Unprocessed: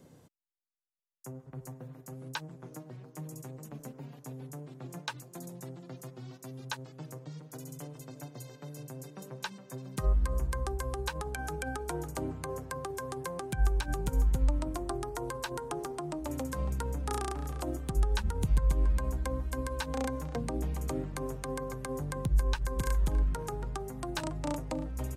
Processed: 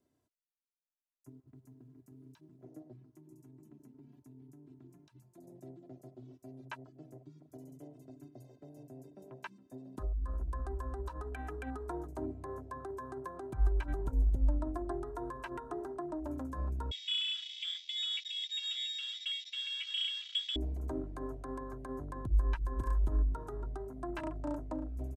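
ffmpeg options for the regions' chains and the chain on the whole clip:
-filter_complex "[0:a]asettb=1/sr,asplit=3[a][b][c];[a]atrim=end=1.294[d];[b]atrim=start=1.29:end=2.64,asetpts=PTS-STARTPTS,afade=t=in:d=0.004:c=qsin,afade=t=out:st=1.346:d=0.004:c=qsin,acompressor=threshold=-45dB:ratio=2.5:attack=3.2:release=140:knee=1:detection=peak,acrusher=bits=6:mode=log:mix=0:aa=0.000001[e];[c]atrim=start=2.636[f];[d][e]acrossfade=d=0.004:c1=hsin:c2=qsin[g];[g][f]acrossfade=d=0.004:c1=qsin:c2=hsin,asettb=1/sr,asplit=3[h][i][j];[h]atrim=end=3.154[k];[i]atrim=start=3.15:end=5.48,asetpts=PTS-STARTPTS,afade=t=in:d=0.004:c=qsin,afade=t=out:st=2.326:d=0.004:c=qsin,acompressor=threshold=-43dB:ratio=12:attack=3.2:release=140:knee=1:detection=peak,aeval=exprs='val(0)+0.000631*sin(2*PI*900*n/s)':c=same[l];[j]atrim=start=5.476[m];[k][l]acrossfade=d=0.004:c1=hsin:c2=qsin[n];[n][m]acrossfade=d=0.004:c1=qsin:c2=hsin,asettb=1/sr,asplit=3[o][p][q];[o]atrim=end=9.594[r];[p]atrim=start=9.59:end=11.82,asetpts=PTS-STARTPTS,afade=t=in:d=0.004:c=qsin,afade=t=out:st=2.226:d=0.004:c=qsin,bandreject=f=2.2k:w=19,aecho=1:1:4.1:0.3,atrim=end_sample=98343,acompressor=threshold=-29dB:ratio=8:attack=3.2:release=140:knee=1:detection=peak[s];[q]atrim=start=11.816[t];[r][s]acrossfade=d=0.004:c1=hsin:c2=qsin[u];[u][t]acrossfade=d=0.004:c1=qsin:c2=hsin,asettb=1/sr,asplit=3[v][w][x];[v]atrim=end=16.914[y];[w]atrim=start=16.91:end=20.56,asetpts=PTS-STARTPTS,afade=t=in:d=0.004:c=qsin,afade=t=out:st=3.646:d=0.004:c=qsin,asuperstop=centerf=3000:order=4:qfactor=0.69,lowshelf=f=270:t=q:w=3:g=-11.5,lowpass=f=3.2k:t=q:w=0.5098,lowpass=f=3.2k:t=q:w=0.6013,lowpass=f=3.2k:t=q:w=0.9,lowpass=f=3.2k:t=q:w=2.563,afreqshift=-3800[z];[x]atrim=start=20.556[aa];[y][z]acrossfade=d=0.004:c1=hsin:c2=qsin[ab];[ab][aa]acrossfade=d=0.004:c1=qsin:c2=hsin,afwtdn=0.00891,aecho=1:1:3:0.68,volume=-5.5dB"

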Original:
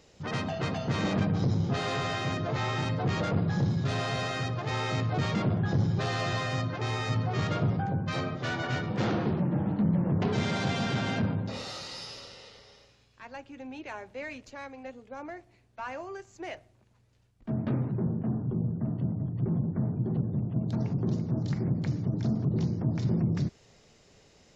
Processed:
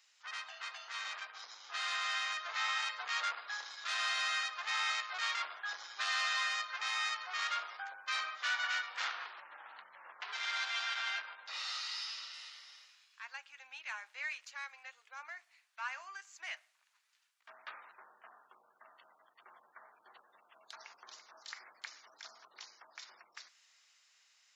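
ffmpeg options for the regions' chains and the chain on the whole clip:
-filter_complex "[0:a]asettb=1/sr,asplit=3[a][b][c];[a]atrim=end=9.084[d];[b]atrim=start=9.08:end=12.34,asetpts=PTS-STARTPTS,afade=t=in:d=0.004:c=qsin,afade=t=out:st=3.256:d=0.004:c=qsin,lowpass=5.9k,acompressor=threshold=-28dB:ratio=2.5:attack=3.2:release=140:knee=1:detection=peak[e];[c]atrim=start=12.336[f];[d][e]acrossfade=d=0.004:c1=hsin:c2=qsin[g];[g][f]acrossfade=d=0.004:c1=qsin:c2=hsin,highpass=f=1.2k:w=0.5412,highpass=f=1.2k:w=1.3066,dynaudnorm=f=220:g=17:m=7dB,volume=-5dB"

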